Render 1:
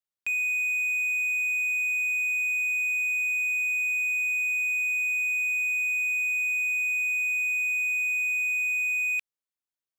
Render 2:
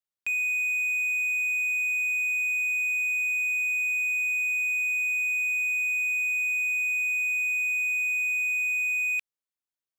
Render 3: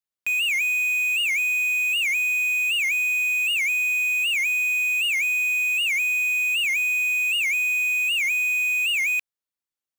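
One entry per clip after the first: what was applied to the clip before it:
no audible change
in parallel at -5 dB: bit crusher 5-bit; on the sum: warped record 78 rpm, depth 250 cents

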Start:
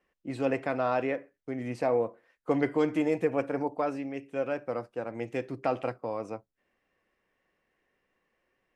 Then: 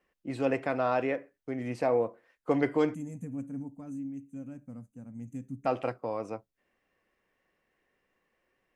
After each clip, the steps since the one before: time-frequency box 2.94–5.66 s, 280–6000 Hz -24 dB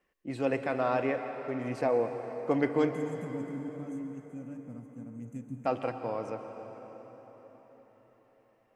reverberation RT60 4.9 s, pre-delay 108 ms, DRR 7 dB; trim -1 dB

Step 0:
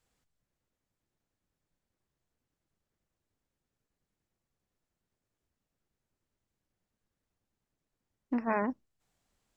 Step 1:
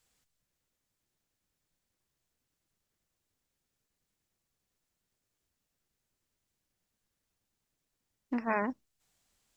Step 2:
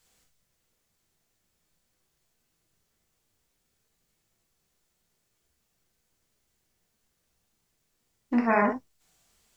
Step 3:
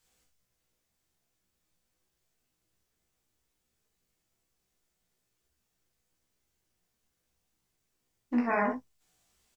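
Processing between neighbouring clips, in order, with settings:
treble shelf 2 kHz +9.5 dB; trim -2 dB
gated-style reverb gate 90 ms flat, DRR 0.5 dB; trim +5.5 dB
doubling 16 ms -4.5 dB; trim -6 dB

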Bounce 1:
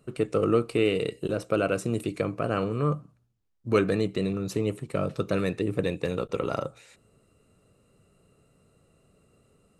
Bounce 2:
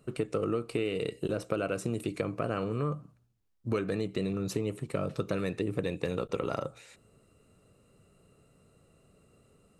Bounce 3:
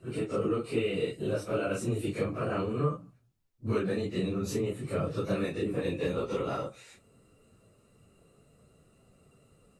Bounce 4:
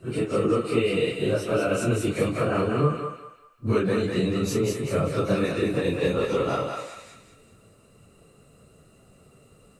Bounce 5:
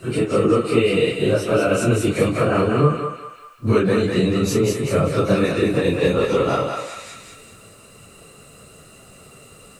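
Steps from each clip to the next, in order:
compression 6:1, threshold -27 dBFS, peak gain reduction 10.5 dB
phase randomisation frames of 100 ms; trim +1 dB
thinning echo 195 ms, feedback 38%, high-pass 700 Hz, level -3 dB; trim +6.5 dB
tape noise reduction on one side only encoder only; trim +6 dB

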